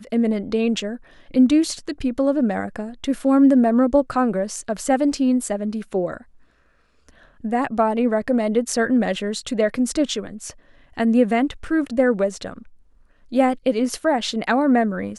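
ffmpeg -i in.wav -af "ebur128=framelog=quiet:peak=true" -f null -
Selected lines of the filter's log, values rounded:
Integrated loudness:
  I:         -20.5 LUFS
  Threshold: -31.3 LUFS
Loudness range:
  LRA:         4.7 LU
  Threshold: -41.4 LUFS
  LRA low:   -24.0 LUFS
  LRA high:  -19.3 LUFS
True peak:
  Peak:       -4.9 dBFS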